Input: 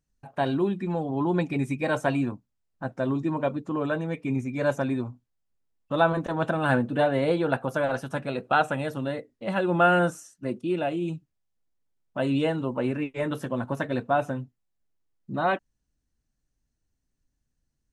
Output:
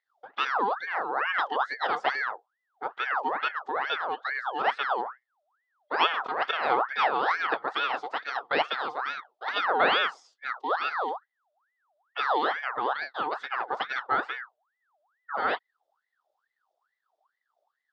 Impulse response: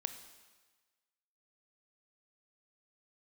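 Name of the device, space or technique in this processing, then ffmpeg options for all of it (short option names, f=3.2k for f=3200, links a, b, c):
voice changer toy: -af "aeval=exprs='val(0)*sin(2*PI*1300*n/s+1300*0.55/2.3*sin(2*PI*2.3*n/s))':c=same,highpass=420,equalizer=f=450:t=q:w=4:g=4,equalizer=f=770:t=q:w=4:g=7,equalizer=f=1.3k:t=q:w=4:g=3,equalizer=f=2.3k:t=q:w=4:g=-10,equalizer=f=3.5k:t=q:w=4:g=5,lowpass=f=5k:w=0.5412,lowpass=f=5k:w=1.3066"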